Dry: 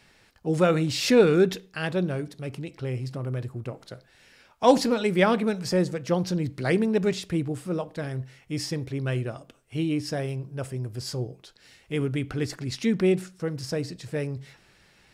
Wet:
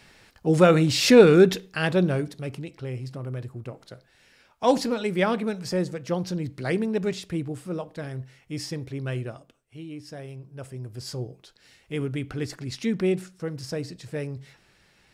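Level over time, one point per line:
0:02.16 +4.5 dB
0:02.82 −2.5 dB
0:09.29 −2.5 dB
0:09.80 −13 dB
0:11.12 −2 dB

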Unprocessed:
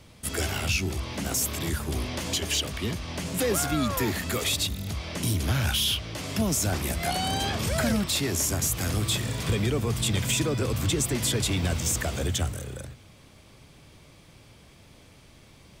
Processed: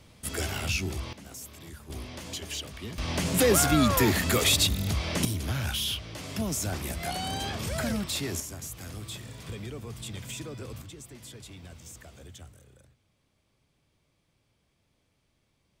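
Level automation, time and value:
−3 dB
from 0:01.13 −16 dB
from 0:01.90 −9 dB
from 0:02.98 +4 dB
from 0:05.25 −5 dB
from 0:08.40 −13 dB
from 0:10.82 −20 dB

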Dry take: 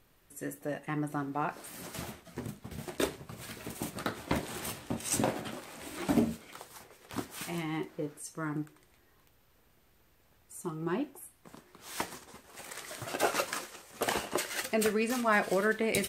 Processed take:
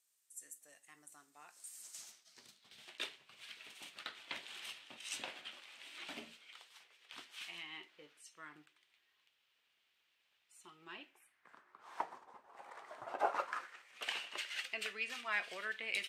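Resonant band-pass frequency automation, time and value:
resonant band-pass, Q 2.2
0:01.80 7,800 Hz
0:02.95 3,000 Hz
0:10.98 3,000 Hz
0:11.98 890 Hz
0:13.32 890 Hz
0:14.03 2,800 Hz

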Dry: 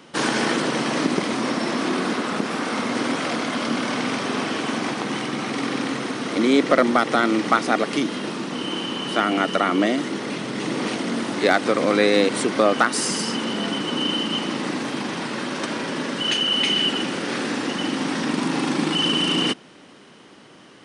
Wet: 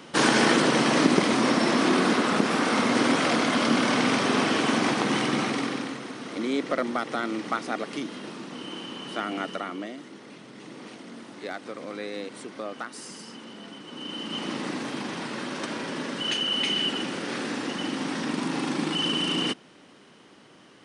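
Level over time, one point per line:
0:05.39 +1.5 dB
0:06.00 −10 dB
0:09.45 −10 dB
0:09.93 −17.5 dB
0:13.84 −17.5 dB
0:14.48 −5.5 dB

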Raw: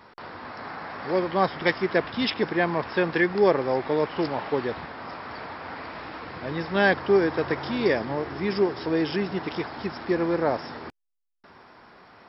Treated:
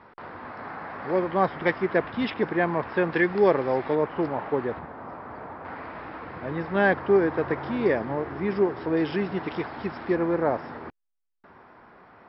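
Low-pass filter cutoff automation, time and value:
2,200 Hz
from 0:03.12 3,100 Hz
from 0:03.95 1,700 Hz
from 0:04.79 1,200 Hz
from 0:05.65 2,000 Hz
from 0:08.97 2,900 Hz
from 0:10.16 2,000 Hz

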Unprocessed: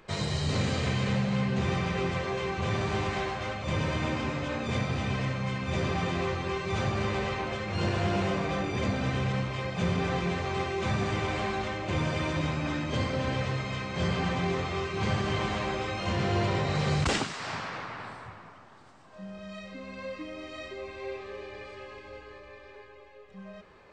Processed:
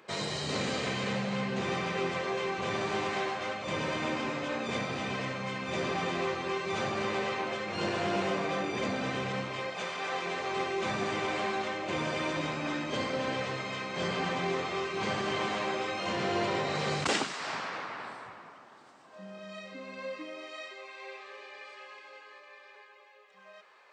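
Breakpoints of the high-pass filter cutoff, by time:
0:09.57 240 Hz
0:09.92 780 Hz
0:10.66 250 Hz
0:20.07 250 Hz
0:20.77 810 Hz

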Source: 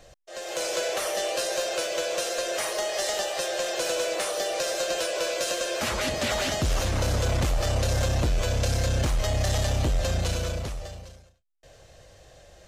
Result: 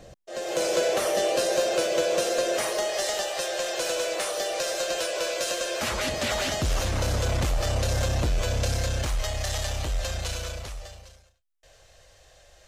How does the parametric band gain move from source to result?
parametric band 200 Hz 2.8 octaves
0:02.41 +10.5 dB
0:03.22 −1.5 dB
0:08.66 −1.5 dB
0:09.33 −11.5 dB

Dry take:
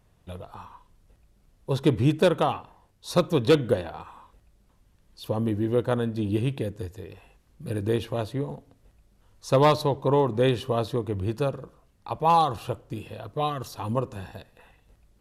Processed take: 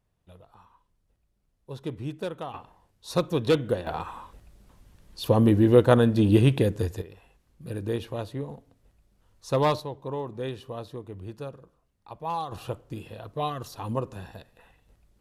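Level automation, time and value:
−12.5 dB
from 0:02.54 −3 dB
from 0:03.87 +7 dB
from 0:07.02 −4 dB
from 0:09.80 −11 dB
from 0:12.52 −2.5 dB

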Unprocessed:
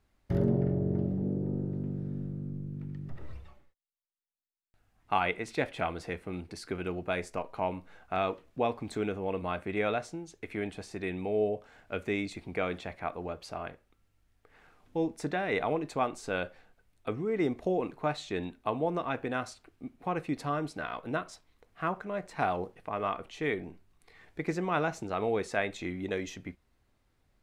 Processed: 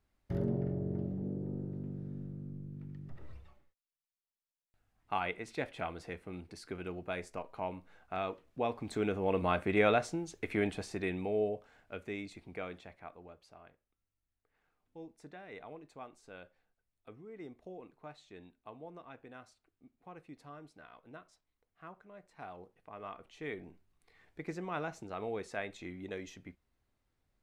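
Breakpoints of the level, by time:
0:08.44 −6.5 dB
0:09.42 +3 dB
0:10.67 +3 dB
0:12.01 −9 dB
0:12.53 −9 dB
0:13.60 −18.5 dB
0:22.37 −18.5 dB
0:23.65 −8.5 dB

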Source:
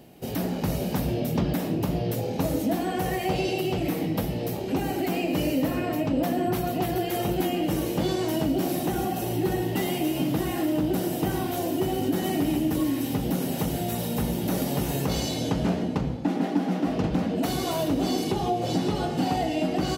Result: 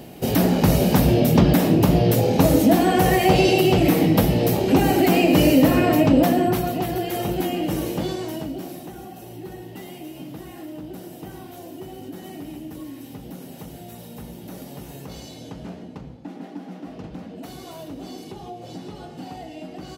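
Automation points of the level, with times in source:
0:06.11 +10 dB
0:06.83 +1.5 dB
0:07.88 +1.5 dB
0:08.94 −11 dB

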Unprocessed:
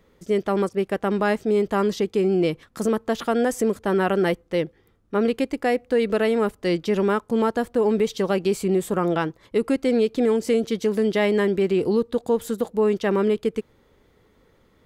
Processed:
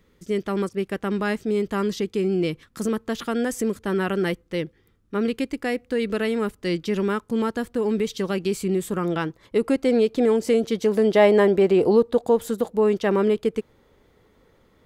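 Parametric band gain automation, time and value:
parametric band 690 Hz 1.3 octaves
0:09.04 −8 dB
0:09.64 +2 dB
0:10.76 +2 dB
0:11.26 +9.5 dB
0:11.98 +9.5 dB
0:12.53 +1.5 dB

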